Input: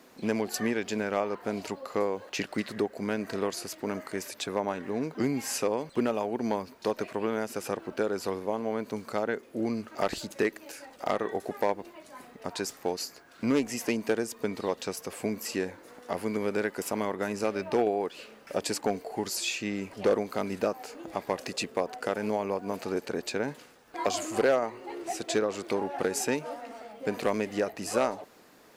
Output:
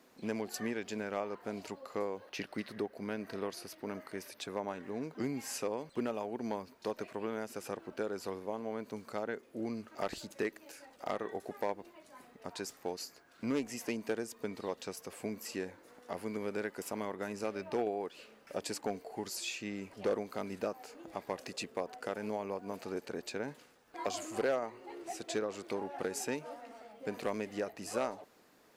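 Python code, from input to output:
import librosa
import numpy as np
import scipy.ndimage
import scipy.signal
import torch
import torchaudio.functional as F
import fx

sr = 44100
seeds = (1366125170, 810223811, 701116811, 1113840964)

y = fx.peak_eq(x, sr, hz=7300.0, db=-10.0, octaves=0.3, at=(2.18, 4.42))
y = y * 10.0 ** (-8.0 / 20.0)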